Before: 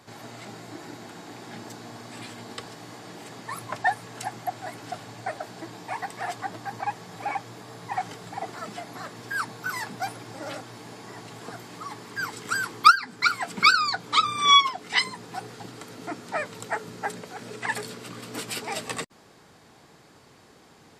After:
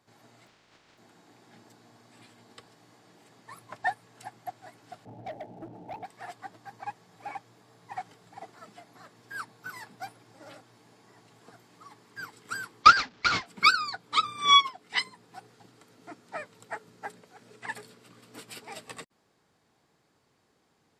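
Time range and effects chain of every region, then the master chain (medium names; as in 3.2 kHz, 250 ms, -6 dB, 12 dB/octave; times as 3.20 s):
0.46–0.97 s: spectral contrast reduction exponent 0.2 + distance through air 150 m
5.05–6.05 s: rippled Chebyshev low-pass 880 Hz, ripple 3 dB + waveshaping leveller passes 3
12.83–13.46 s: one-bit delta coder 32 kbps, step -14 dBFS + high-pass 49 Hz 6 dB/octave + gate with hold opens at -13 dBFS, closes at -18 dBFS
whole clip: dynamic bell 6.3 kHz, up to -4 dB, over -54 dBFS, Q 4.7; upward expansion 1.5:1, over -41 dBFS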